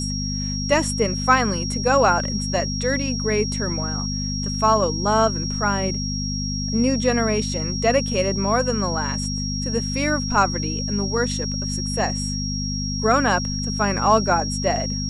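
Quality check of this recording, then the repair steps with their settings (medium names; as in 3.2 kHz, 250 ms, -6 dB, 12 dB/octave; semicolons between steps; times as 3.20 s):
hum 50 Hz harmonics 5 -27 dBFS
whine 5.6 kHz -28 dBFS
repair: band-stop 5.6 kHz, Q 30; de-hum 50 Hz, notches 5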